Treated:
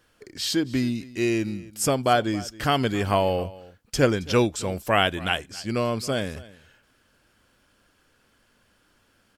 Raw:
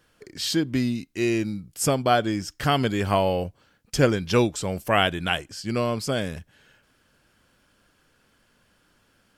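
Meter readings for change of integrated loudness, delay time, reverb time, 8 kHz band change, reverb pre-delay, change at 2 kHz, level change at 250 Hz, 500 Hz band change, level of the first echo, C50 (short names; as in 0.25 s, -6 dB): -0.5 dB, 0.271 s, none, 0.0 dB, none, 0.0 dB, -0.5 dB, 0.0 dB, -20.0 dB, none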